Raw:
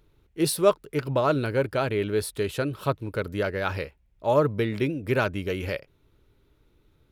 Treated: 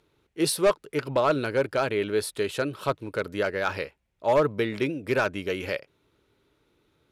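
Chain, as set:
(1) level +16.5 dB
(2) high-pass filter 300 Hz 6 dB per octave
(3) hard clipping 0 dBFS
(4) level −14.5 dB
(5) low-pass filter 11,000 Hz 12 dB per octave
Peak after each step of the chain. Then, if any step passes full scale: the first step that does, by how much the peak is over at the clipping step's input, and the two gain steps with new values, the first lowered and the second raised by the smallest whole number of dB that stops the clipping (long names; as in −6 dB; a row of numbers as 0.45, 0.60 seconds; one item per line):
+9.5, +8.5, 0.0, −14.5, −14.0 dBFS
step 1, 8.5 dB
step 1 +7.5 dB, step 4 −5.5 dB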